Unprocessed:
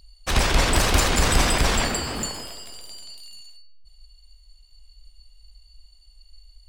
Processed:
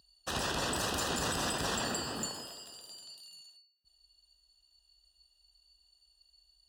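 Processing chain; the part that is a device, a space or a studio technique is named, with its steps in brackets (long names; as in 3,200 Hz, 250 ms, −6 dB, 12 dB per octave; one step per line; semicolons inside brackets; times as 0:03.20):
PA system with an anti-feedback notch (high-pass filter 120 Hz 12 dB per octave; Butterworth band-reject 2,200 Hz, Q 3.8; brickwall limiter −16 dBFS, peak gain reduction 6.5 dB)
level −8 dB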